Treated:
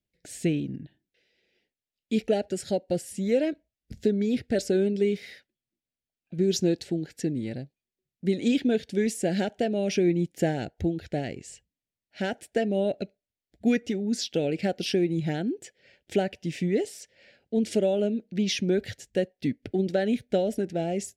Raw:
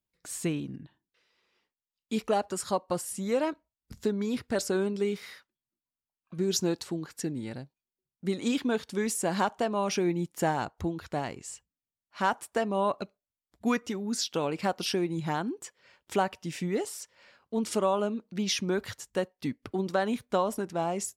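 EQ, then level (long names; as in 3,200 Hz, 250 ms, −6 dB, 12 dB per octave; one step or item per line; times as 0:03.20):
low-pass filter 2,900 Hz 6 dB per octave
dynamic equaliser 860 Hz, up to −5 dB, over −41 dBFS, Q 2.6
Butterworth band-reject 1,100 Hz, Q 1
+5.0 dB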